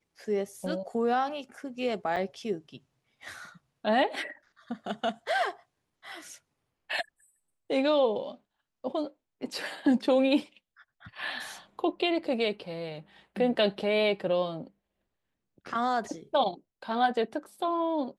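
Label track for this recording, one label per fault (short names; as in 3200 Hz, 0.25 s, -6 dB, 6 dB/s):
2.160000	2.170000	gap 5.3 ms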